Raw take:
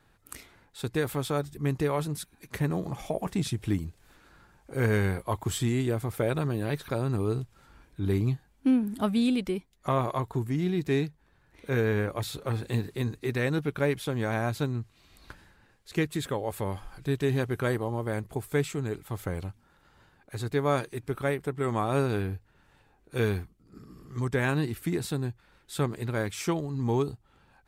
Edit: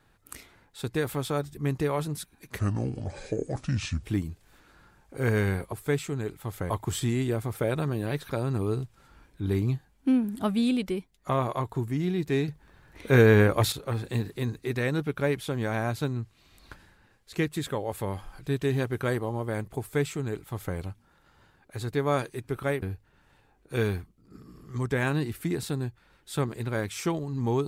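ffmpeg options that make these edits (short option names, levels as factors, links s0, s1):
-filter_complex "[0:a]asplit=8[s0][s1][s2][s3][s4][s5][s6][s7];[s0]atrim=end=2.594[s8];[s1]atrim=start=2.59:end=3.6,asetpts=PTS-STARTPTS,asetrate=30870,aresample=44100,atrim=end_sample=63630,asetpts=PTS-STARTPTS[s9];[s2]atrim=start=3.596:end=5.292[s10];[s3]atrim=start=18.378:end=19.362[s11];[s4]atrim=start=5.288:end=11.072[s12];[s5]atrim=start=11.068:end=12.312,asetpts=PTS-STARTPTS,volume=2.66[s13];[s6]atrim=start=12.308:end=21.412[s14];[s7]atrim=start=22.238[s15];[s8][s9]acrossfade=d=0.004:c1=hsin:c2=hsin[s16];[s16][s10]acrossfade=d=0.004:c1=hsin:c2=hsin[s17];[s17][s11]acrossfade=d=0.004:c1=hsin:c2=hsin[s18];[s18][s12]acrossfade=d=0.004:c1=hsin:c2=hsin[s19];[s19][s13]acrossfade=d=0.004:c1=hsin:c2=hsin[s20];[s20][s14]acrossfade=d=0.004:c1=hsin:c2=hsin[s21];[s21][s15]acrossfade=d=0.004:c1=hsin:c2=hsin"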